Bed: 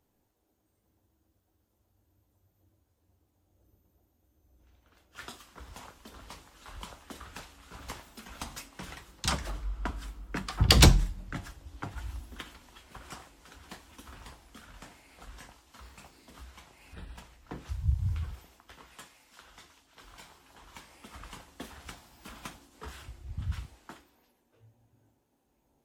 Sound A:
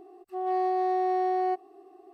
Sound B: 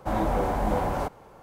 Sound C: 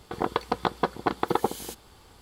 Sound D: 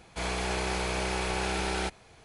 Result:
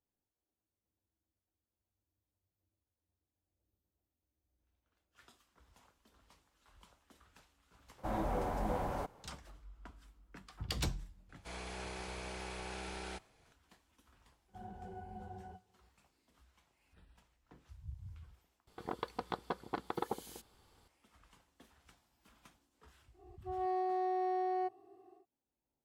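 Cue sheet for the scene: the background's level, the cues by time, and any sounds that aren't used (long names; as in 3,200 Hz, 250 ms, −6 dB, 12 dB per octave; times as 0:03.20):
bed −19 dB
0:07.98: mix in B −10.5 dB
0:11.29: mix in D −14 dB
0:14.48: mix in B −14 dB + resonances in every octave F#, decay 0.12 s
0:18.67: overwrite with C −13.5 dB
0:23.13: mix in A −8.5 dB, fades 0.10 s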